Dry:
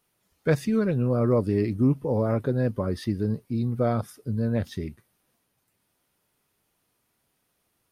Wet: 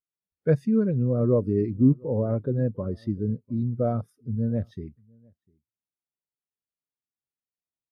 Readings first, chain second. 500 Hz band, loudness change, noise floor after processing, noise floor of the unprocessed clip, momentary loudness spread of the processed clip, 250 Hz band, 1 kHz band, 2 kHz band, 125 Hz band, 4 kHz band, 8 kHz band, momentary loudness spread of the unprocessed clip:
-0.5 dB, +0.5 dB, under -85 dBFS, -74 dBFS, 10 LU, +0.5 dB, -5.5 dB, no reading, +0.5 dB, under -15 dB, under -15 dB, 8 LU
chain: echo from a far wall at 120 m, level -20 dB; spectral contrast expander 1.5:1; trim +2 dB

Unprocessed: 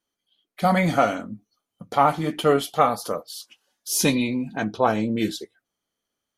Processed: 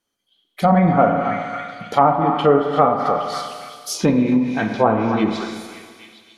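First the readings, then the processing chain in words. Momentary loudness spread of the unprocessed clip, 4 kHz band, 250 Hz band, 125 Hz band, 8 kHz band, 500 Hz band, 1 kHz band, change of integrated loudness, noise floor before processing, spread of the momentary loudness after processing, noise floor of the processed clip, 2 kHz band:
17 LU, -0.5 dB, +6.5 dB, +6.0 dB, -4.5 dB, +5.5 dB, +5.5 dB, +4.5 dB, -84 dBFS, 14 LU, -72 dBFS, +1.5 dB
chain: repeats whose band climbs or falls 273 ms, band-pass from 1 kHz, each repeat 0.7 oct, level -8 dB; Schroeder reverb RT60 1.8 s, combs from 32 ms, DRR 5 dB; low-pass that closes with the level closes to 1.2 kHz, closed at -16 dBFS; trim +4.5 dB

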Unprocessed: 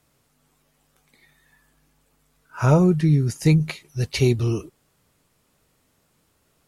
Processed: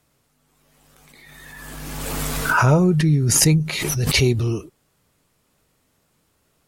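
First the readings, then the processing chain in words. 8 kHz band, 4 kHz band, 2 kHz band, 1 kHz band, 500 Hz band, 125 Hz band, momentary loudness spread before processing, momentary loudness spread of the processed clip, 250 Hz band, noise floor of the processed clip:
+17.0 dB, +10.5 dB, +11.0 dB, +7.5 dB, +0.5 dB, +1.5 dB, 12 LU, 16 LU, +1.0 dB, -66 dBFS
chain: swell ahead of each attack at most 23 dB/s

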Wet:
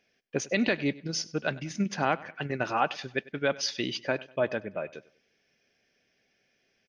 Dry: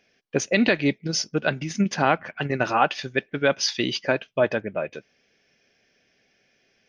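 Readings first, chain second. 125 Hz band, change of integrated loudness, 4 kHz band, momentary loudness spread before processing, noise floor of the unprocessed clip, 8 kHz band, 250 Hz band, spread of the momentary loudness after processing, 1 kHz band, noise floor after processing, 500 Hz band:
-6.5 dB, -6.5 dB, -6.5 dB, 8 LU, -67 dBFS, -6.5 dB, -6.5 dB, 8 LU, -6.5 dB, -73 dBFS, -6.5 dB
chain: feedback delay 98 ms, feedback 37%, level -20.5 dB; trim -6.5 dB

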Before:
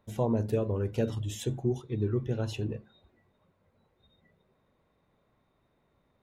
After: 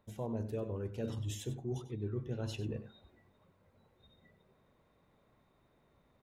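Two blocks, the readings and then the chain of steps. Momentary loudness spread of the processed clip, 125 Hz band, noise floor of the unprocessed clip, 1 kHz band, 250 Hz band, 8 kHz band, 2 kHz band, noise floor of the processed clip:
2 LU, -7.5 dB, -73 dBFS, -9.5 dB, -8.5 dB, -5.0 dB, -7.0 dB, -72 dBFS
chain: reverse; compression 4:1, threshold -38 dBFS, peak gain reduction 13 dB; reverse; delay 96 ms -13 dB; trim +1 dB

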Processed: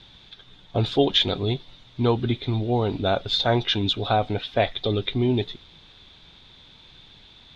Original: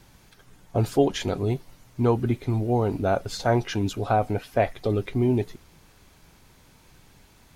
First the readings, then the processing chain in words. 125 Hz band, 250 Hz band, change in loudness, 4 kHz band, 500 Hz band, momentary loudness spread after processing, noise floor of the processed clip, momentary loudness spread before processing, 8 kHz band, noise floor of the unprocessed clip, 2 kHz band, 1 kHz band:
0.0 dB, 0.0 dB, +1.5 dB, +14.5 dB, 0.0 dB, 7 LU, -51 dBFS, 5 LU, no reading, -56 dBFS, +3.0 dB, +0.5 dB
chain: resonant low-pass 3.6 kHz, resonance Q 12

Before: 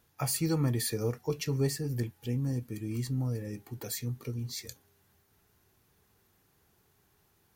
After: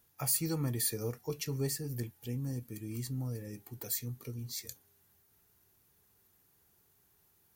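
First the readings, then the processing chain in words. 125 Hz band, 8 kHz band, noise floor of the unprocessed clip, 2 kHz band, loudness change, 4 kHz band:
-5.5 dB, +1.0 dB, -70 dBFS, -5.0 dB, -3.0 dB, -2.5 dB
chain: treble shelf 7.5 kHz +11.5 dB; trim -5.5 dB

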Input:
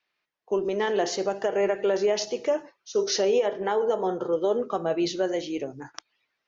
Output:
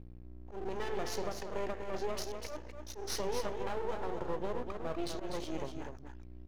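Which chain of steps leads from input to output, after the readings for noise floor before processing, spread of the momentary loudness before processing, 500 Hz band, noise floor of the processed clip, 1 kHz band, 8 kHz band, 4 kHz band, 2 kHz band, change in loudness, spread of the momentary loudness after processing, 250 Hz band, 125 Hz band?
-80 dBFS, 7 LU, -14.5 dB, -49 dBFS, -9.5 dB, no reading, -11.0 dB, -10.5 dB, -13.0 dB, 10 LU, -11.5 dB, -3.0 dB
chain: compression 3:1, threshold -28 dBFS, peak gain reduction 7.5 dB; hum 60 Hz, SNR 12 dB; slow attack 101 ms; half-wave rectifier; on a send: delay 247 ms -6.5 dB; on the sum: trim -3 dB

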